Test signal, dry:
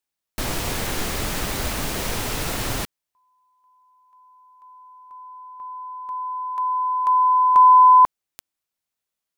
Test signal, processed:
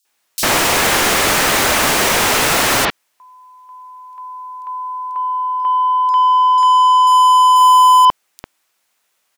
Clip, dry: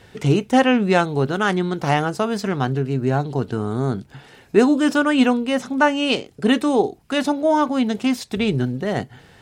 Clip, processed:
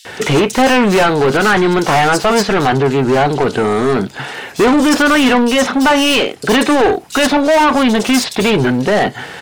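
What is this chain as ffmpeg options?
-filter_complex "[0:a]asplit=2[a][b];[b]highpass=f=720:p=1,volume=31dB,asoftclip=type=tanh:threshold=-2dB[c];[a][c]amix=inputs=2:normalize=0,lowpass=f=6k:p=1,volume=-6dB,acrossover=split=4100[d][e];[d]adelay=50[f];[f][e]amix=inputs=2:normalize=0,volume=-1.5dB"

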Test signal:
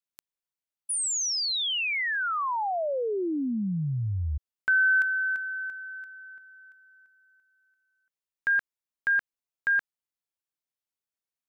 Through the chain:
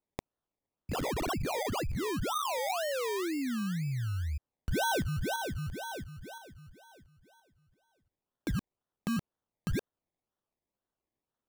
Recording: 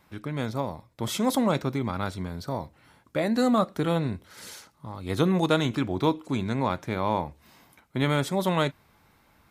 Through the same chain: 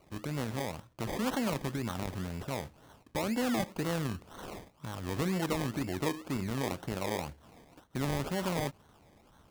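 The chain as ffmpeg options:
-af "acompressor=threshold=-35dB:ratio=2:attack=4.9:release=71:detection=rms,acrusher=samples=25:mix=1:aa=0.000001:lfo=1:lforange=15:lforate=2"

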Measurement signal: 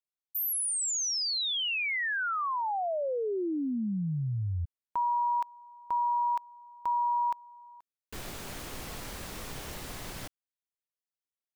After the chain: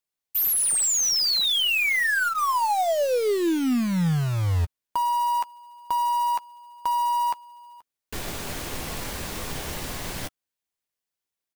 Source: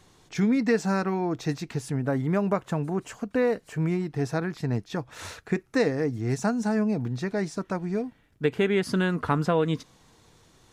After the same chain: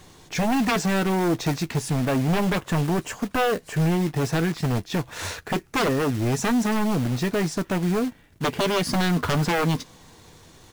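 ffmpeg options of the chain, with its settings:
-filter_complex "[0:a]bandreject=f=1.3k:w=18,aeval=exprs='0.282*sin(PI/2*3.98*val(0)/0.282)':c=same,aeval=exprs='0.299*(cos(1*acos(clip(val(0)/0.299,-1,1)))-cos(1*PI/2))+0.00668*(cos(3*acos(clip(val(0)/0.299,-1,1)))-cos(3*PI/2))+0.00335*(cos(6*acos(clip(val(0)/0.299,-1,1)))-cos(6*PI/2))':c=same,acrusher=bits=3:mode=log:mix=0:aa=0.000001,asplit=2[a][b];[b]adelay=12,volume=-13dB[c];[a][c]amix=inputs=2:normalize=0,volume=-7.5dB"

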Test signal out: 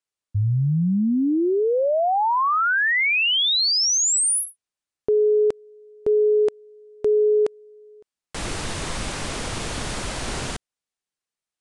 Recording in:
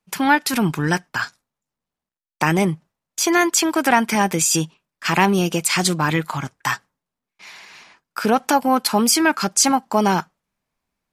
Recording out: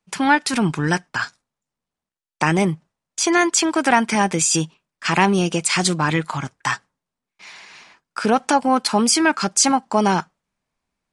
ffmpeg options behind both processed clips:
-af "aresample=22050,aresample=44100"

